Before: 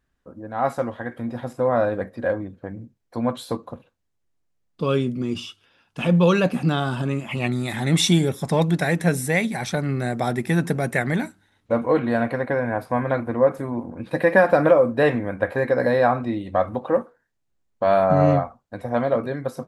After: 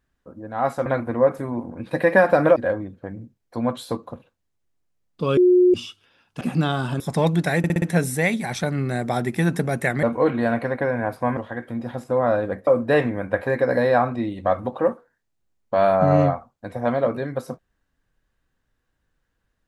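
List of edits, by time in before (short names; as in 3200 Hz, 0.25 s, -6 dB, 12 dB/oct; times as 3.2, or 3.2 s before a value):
0.86–2.16 swap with 13.06–14.76
4.97–5.34 bleep 361 Hz -11 dBFS
6.01–6.49 cut
7.08–8.35 cut
8.93 stutter 0.06 s, 5 plays
11.14–11.72 cut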